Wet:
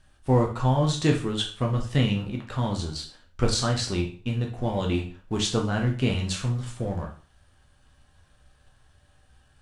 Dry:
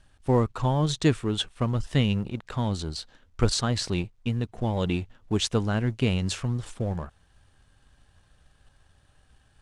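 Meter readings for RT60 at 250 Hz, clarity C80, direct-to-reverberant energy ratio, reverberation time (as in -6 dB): 0.40 s, 14.0 dB, 0.0 dB, 0.40 s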